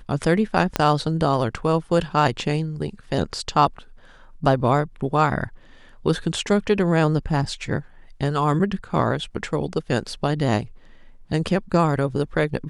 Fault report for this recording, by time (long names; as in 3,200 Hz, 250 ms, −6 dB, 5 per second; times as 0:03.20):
0:00.76: click −5 dBFS